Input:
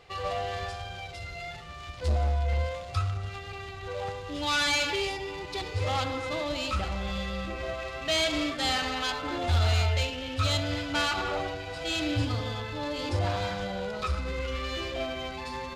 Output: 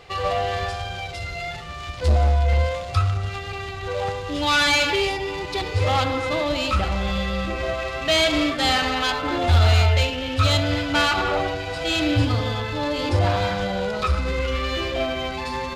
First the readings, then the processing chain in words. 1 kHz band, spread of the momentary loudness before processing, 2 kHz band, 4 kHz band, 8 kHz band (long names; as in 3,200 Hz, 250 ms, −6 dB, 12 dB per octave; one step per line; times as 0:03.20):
+8.5 dB, 11 LU, +8.0 dB, +7.0 dB, +5.0 dB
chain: dynamic equaliser 7,000 Hz, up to −4 dB, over −45 dBFS, Q 0.73
level +8.5 dB